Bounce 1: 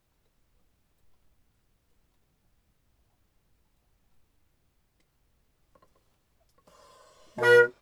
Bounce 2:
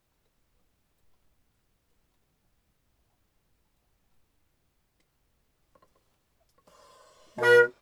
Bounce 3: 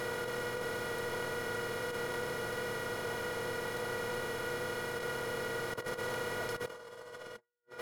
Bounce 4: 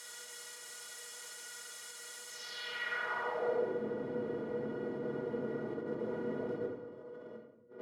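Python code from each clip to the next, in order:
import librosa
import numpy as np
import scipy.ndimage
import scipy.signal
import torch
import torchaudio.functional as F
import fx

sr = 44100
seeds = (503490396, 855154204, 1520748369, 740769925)

y1 = fx.low_shelf(x, sr, hz=170.0, db=-3.5)
y2 = fx.bin_compress(y1, sr, power=0.4)
y2 = fx.over_compress(y2, sr, threshold_db=-43.0, ratio=-0.5)
y3 = fx.filter_sweep_bandpass(y2, sr, from_hz=7600.0, to_hz=290.0, start_s=2.26, end_s=3.79, q=2.2)
y3 = fx.room_shoebox(y3, sr, seeds[0], volume_m3=270.0, walls='mixed', distance_m=1.4)
y3 = y3 * 10.0 ** (4.0 / 20.0)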